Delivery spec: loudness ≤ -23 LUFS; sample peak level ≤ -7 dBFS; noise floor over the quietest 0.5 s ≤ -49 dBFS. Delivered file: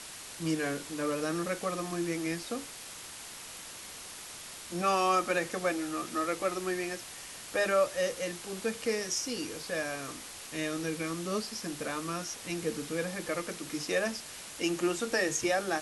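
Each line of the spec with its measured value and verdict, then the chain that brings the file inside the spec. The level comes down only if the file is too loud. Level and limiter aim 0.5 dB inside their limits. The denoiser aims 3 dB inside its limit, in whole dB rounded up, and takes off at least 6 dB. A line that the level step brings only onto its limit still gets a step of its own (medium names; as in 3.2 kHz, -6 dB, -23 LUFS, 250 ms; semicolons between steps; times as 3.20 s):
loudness -33.0 LUFS: pass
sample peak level -16.5 dBFS: pass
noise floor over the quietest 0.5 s -45 dBFS: fail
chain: noise reduction 7 dB, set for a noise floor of -45 dBFS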